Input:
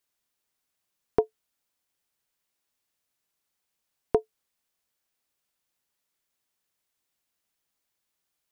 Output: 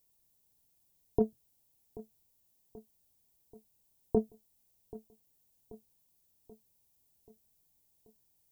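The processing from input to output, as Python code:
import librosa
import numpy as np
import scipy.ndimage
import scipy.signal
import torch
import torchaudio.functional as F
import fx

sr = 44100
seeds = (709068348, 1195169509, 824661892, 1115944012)

p1 = fx.octave_divider(x, sr, octaves=1, level_db=-2.0)
p2 = scipy.signal.sosfilt(scipy.signal.ellip(4, 1.0, 40, 930.0, 'lowpass', fs=sr, output='sos'), p1)
p3 = fx.low_shelf(p2, sr, hz=220.0, db=12.0)
p4 = fx.over_compress(p3, sr, threshold_db=-21.0, ratio=-1.0)
p5 = fx.dmg_noise_colour(p4, sr, seeds[0], colour='violet', level_db=-70.0)
p6 = p5 + fx.echo_feedback(p5, sr, ms=783, feedback_pct=58, wet_db=-19, dry=0)
y = F.gain(torch.from_numpy(p6), -2.5).numpy()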